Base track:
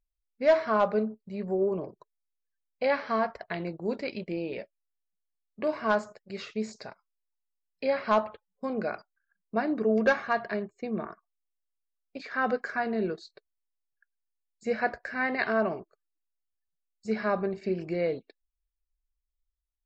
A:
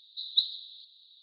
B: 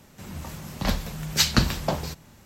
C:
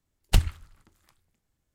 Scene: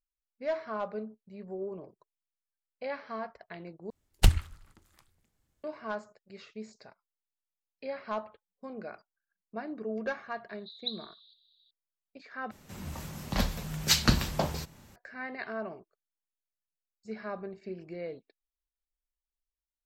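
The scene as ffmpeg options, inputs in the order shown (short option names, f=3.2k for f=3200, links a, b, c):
-filter_complex "[0:a]volume=-10.5dB[a];[3:a]acontrast=30[b];[1:a]bandreject=f=4.3k:w=29[c];[a]asplit=3[d][e][f];[d]atrim=end=3.904[g];[b]atrim=end=1.74,asetpts=PTS-STARTPTS,volume=-4.5dB[h];[e]atrim=start=5.636:end=12.514[i];[2:a]atrim=end=2.45,asetpts=PTS-STARTPTS,volume=-3.5dB[j];[f]atrim=start=14.956[k];[c]atrim=end=1.22,asetpts=PTS-STARTPTS,volume=-10dB,afade=t=in:d=0.004:c=hsin,afade=t=out:st=1.216:d=0.004:c=hsin,adelay=10490[l];[g][h]acrossfade=d=0.004:c1=hsin:c2=hsin[m];[m][i]acrossfade=d=0.004:c1=hsin:c2=hsin[n];[n][j]acrossfade=d=0.004:c1=hsin:c2=hsin[o];[o][k]acrossfade=d=0.004:c1=hsin:c2=hsin[p];[p][l]amix=inputs=2:normalize=0"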